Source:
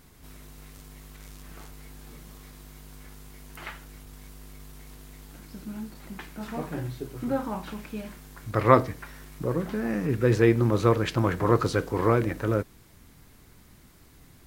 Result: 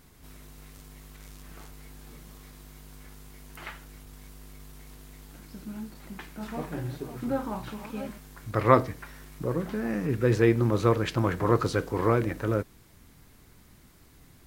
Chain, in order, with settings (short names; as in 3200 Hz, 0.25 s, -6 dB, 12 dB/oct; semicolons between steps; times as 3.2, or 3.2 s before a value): 6–8.18 reverse delay 0.422 s, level -10 dB; gain -1.5 dB